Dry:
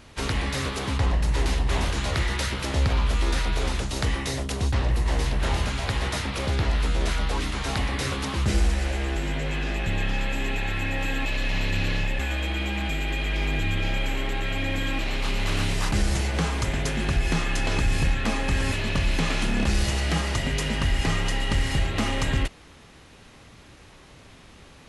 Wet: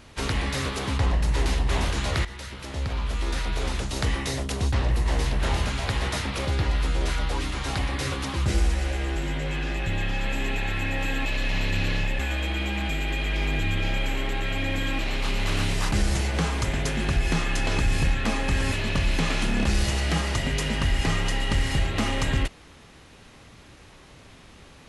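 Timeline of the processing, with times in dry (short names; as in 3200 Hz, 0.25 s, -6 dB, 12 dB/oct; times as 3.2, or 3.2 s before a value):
2.25–4.08 fade in, from -13.5 dB
6.45–10.24 notch comb 220 Hz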